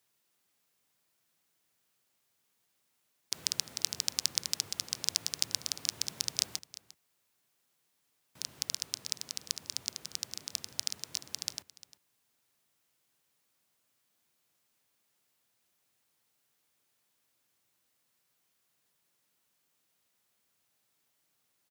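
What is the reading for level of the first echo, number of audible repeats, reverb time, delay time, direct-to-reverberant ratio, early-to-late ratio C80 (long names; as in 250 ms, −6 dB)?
−18.0 dB, 1, no reverb audible, 351 ms, no reverb audible, no reverb audible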